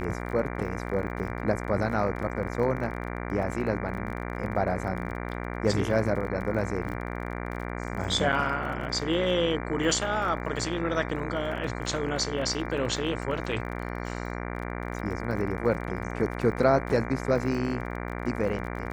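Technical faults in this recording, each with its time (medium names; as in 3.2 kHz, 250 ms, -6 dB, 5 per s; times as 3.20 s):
buzz 60 Hz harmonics 39 -34 dBFS
crackle 31 per s -36 dBFS
8.32–8.33 s: dropout 7 ms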